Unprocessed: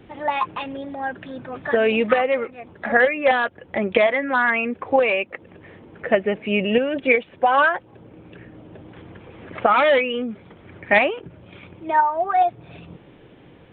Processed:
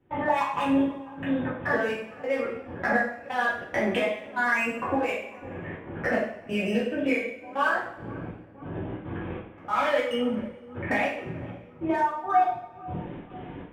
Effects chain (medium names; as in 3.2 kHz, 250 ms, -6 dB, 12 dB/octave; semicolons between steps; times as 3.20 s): local Wiener filter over 9 samples; compression 10:1, threshold -30 dBFS, peak gain reduction 19.5 dB; trance gate ".xxx.xxx.." 141 bpm -24 dB; feedback echo behind a low-pass 496 ms, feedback 56%, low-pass 1.2 kHz, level -19 dB; two-slope reverb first 0.55 s, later 1.8 s, from -20 dB, DRR -8 dB